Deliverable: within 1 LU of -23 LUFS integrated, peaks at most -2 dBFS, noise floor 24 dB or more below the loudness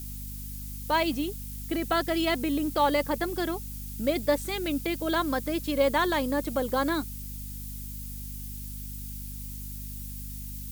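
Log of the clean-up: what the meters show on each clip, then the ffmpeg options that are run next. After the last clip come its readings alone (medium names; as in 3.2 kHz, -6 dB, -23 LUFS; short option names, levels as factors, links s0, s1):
hum 50 Hz; highest harmonic 250 Hz; hum level -37 dBFS; noise floor -38 dBFS; noise floor target -54 dBFS; loudness -29.5 LUFS; peak level -12.0 dBFS; loudness target -23.0 LUFS
-> -af "bandreject=f=50:t=h:w=4,bandreject=f=100:t=h:w=4,bandreject=f=150:t=h:w=4,bandreject=f=200:t=h:w=4,bandreject=f=250:t=h:w=4"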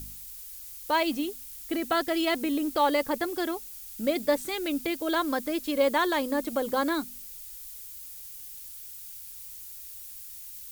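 hum not found; noise floor -43 dBFS; noise floor target -54 dBFS
-> -af "afftdn=nr=11:nf=-43"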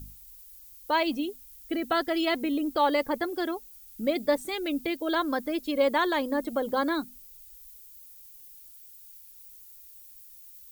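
noise floor -50 dBFS; noise floor target -52 dBFS
-> -af "afftdn=nr=6:nf=-50"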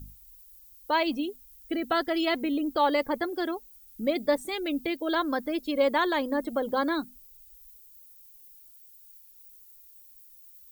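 noise floor -54 dBFS; loudness -28.5 LUFS; peak level -12.5 dBFS; loudness target -23.0 LUFS
-> -af "volume=1.88"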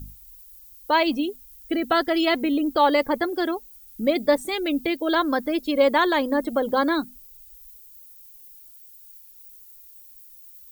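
loudness -23.0 LUFS; peak level -7.0 dBFS; noise floor -48 dBFS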